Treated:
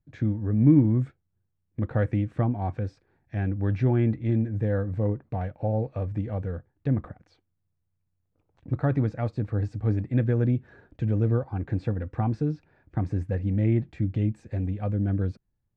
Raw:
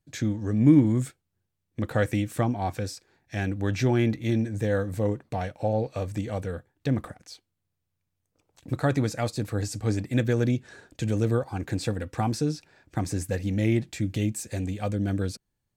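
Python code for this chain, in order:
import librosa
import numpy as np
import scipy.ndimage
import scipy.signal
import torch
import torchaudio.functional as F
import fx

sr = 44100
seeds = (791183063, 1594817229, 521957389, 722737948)

y = scipy.signal.sosfilt(scipy.signal.butter(2, 1800.0, 'lowpass', fs=sr, output='sos'), x)
y = fx.low_shelf(y, sr, hz=180.0, db=9.5)
y = y * 10.0 ** (-4.0 / 20.0)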